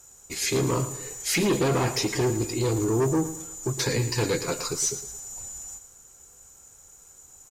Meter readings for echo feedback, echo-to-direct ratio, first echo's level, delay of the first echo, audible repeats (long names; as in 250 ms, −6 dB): 39%, −12.5 dB, −13.0 dB, 111 ms, 3